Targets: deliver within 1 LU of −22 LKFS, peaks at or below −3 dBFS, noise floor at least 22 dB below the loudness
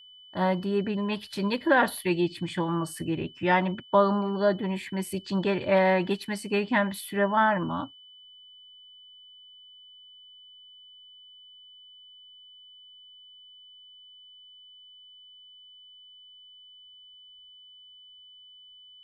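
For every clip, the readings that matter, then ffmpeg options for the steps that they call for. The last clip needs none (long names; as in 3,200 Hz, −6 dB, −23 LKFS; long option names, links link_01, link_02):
interfering tone 3,000 Hz; level of the tone −49 dBFS; integrated loudness −26.5 LKFS; sample peak −10.0 dBFS; target loudness −22.0 LKFS
→ -af "bandreject=frequency=3000:width=30"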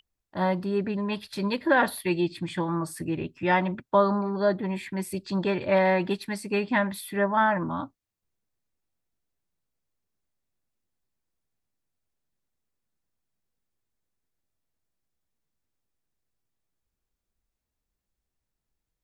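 interfering tone none found; integrated loudness −26.5 LKFS; sample peak −10.0 dBFS; target loudness −22.0 LKFS
→ -af "volume=4.5dB"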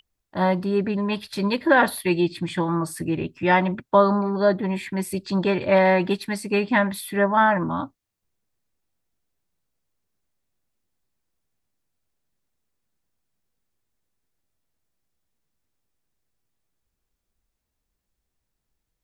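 integrated loudness −22.0 LKFS; sample peak −5.5 dBFS; background noise floor −81 dBFS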